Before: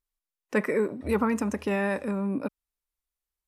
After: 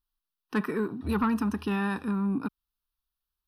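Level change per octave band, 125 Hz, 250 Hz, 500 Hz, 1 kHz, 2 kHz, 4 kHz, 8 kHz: +1.5 dB, +1.0 dB, -7.0 dB, 0.0 dB, -3.5 dB, +2.0 dB, n/a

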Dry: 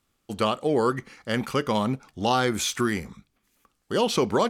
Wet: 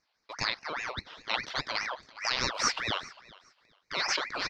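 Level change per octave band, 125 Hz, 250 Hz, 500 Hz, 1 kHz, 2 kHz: -15.5, -20.0, -17.0, -8.0, +1.0 dB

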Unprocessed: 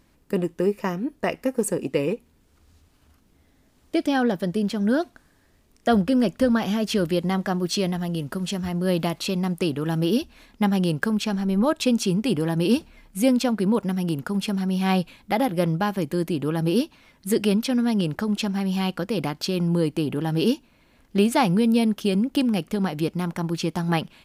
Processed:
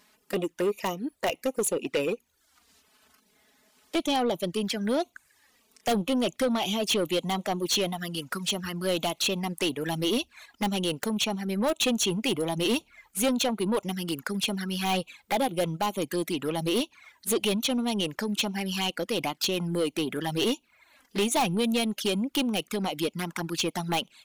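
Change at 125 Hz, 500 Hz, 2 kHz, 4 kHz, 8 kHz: -9.5, -3.5, -1.5, +3.5, +3.5 dB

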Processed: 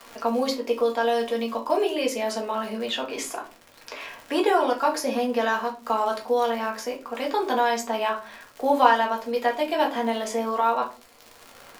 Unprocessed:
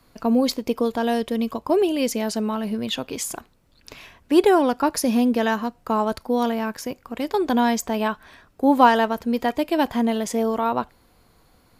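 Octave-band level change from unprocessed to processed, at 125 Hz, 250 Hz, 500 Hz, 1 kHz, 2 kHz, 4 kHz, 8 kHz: n/a, -9.0 dB, -1.5 dB, 0.0 dB, +0.5 dB, -1.0 dB, -4.5 dB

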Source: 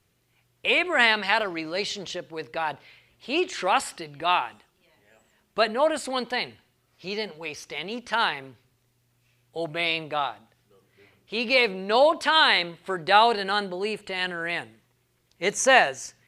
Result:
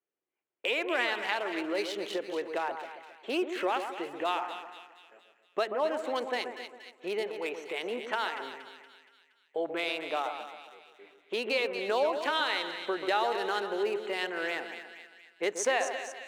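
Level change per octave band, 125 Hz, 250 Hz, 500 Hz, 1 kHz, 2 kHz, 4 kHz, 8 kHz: under -15 dB, -4.5 dB, -4.5 dB, -8.5 dB, -9.0 dB, -9.5 dB, -8.0 dB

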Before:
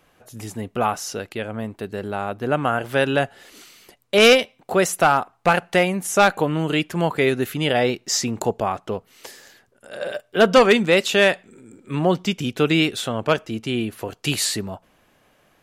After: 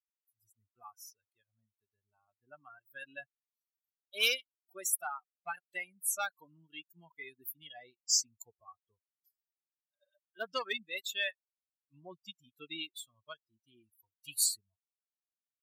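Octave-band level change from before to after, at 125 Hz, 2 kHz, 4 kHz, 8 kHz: under -40 dB, -17.5 dB, -13.0 dB, -6.5 dB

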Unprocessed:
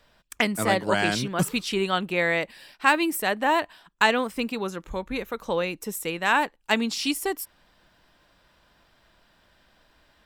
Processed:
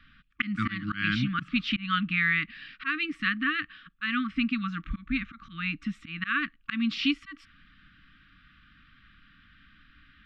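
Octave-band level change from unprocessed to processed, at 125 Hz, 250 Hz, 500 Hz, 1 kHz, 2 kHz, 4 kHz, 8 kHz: -1.0 dB, -1.0 dB, under -25 dB, -10.5 dB, -2.5 dB, -4.0 dB, under -25 dB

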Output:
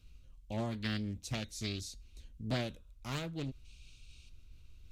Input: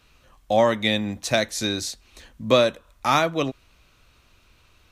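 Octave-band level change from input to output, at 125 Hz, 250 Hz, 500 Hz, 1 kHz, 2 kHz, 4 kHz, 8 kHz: -6.0, -12.5, -22.5, -23.0, -17.5, -16.5, -15.5 dB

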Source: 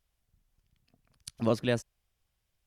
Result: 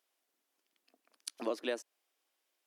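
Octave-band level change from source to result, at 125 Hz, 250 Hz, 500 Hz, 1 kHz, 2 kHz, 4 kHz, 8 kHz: under -35 dB, -11.0 dB, -6.5 dB, -6.0 dB, -5.5 dB, -3.5 dB, -1.5 dB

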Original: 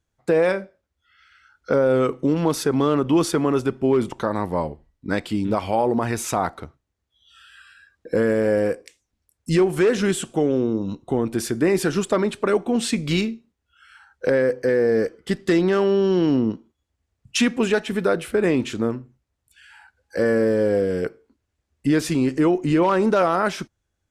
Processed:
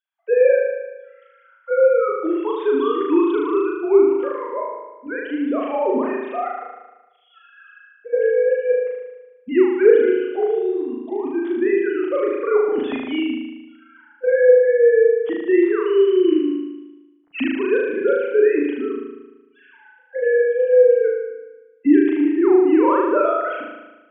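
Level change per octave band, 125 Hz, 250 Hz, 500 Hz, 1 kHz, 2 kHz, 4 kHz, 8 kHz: under -25 dB, +1.0 dB, +5.0 dB, 0.0 dB, +0.5 dB, n/a, under -40 dB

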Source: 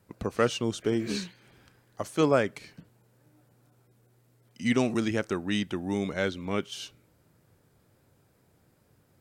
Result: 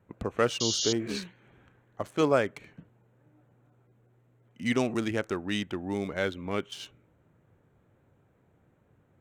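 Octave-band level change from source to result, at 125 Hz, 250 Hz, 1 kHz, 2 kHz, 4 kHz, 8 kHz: -2.5, -2.5, -0.5, -0.5, +3.5, +6.5 dB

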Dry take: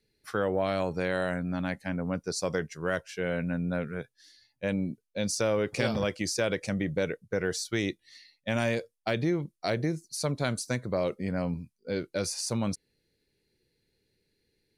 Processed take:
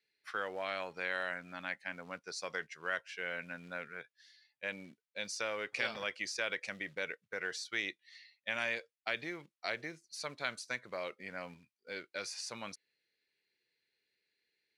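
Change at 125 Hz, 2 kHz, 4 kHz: -24.5, -1.0, -5.0 dB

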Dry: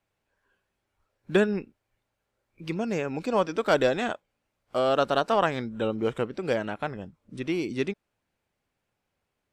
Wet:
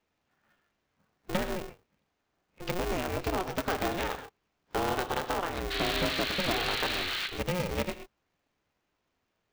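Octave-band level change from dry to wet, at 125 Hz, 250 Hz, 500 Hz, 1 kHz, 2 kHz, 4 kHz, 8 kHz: -1.5, -6.0, -7.5, -3.0, 0.0, +5.0, +6.5 dB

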